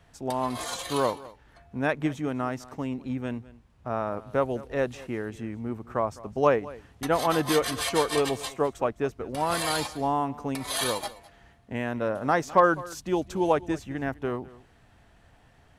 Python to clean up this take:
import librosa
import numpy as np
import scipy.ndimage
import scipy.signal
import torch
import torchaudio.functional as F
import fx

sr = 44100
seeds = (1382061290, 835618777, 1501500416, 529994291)

y = fx.fix_echo_inverse(x, sr, delay_ms=207, level_db=-19.5)